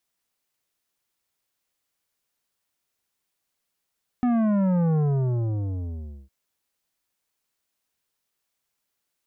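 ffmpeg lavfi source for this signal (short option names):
-f lavfi -i "aevalsrc='0.1*clip((2.06-t)/1.33,0,1)*tanh(3.55*sin(2*PI*250*2.06/log(65/250)*(exp(log(65/250)*t/2.06)-1)))/tanh(3.55)':d=2.06:s=44100"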